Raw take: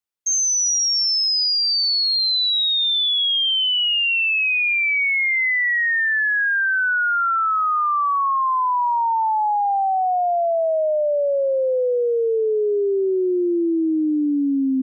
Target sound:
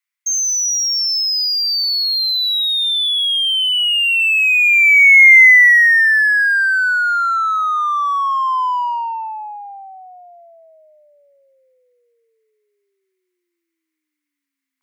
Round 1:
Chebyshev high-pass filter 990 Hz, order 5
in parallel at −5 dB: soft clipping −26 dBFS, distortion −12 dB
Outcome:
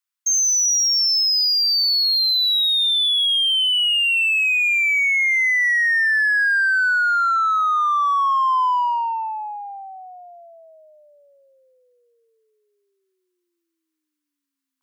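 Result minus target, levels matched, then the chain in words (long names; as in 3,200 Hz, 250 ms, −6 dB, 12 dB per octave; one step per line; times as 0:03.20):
2,000 Hz band −2.5 dB
Chebyshev high-pass filter 990 Hz, order 5
parametric band 2,100 Hz +14 dB 0.44 octaves
in parallel at −5 dB: soft clipping −26 dBFS, distortion −3 dB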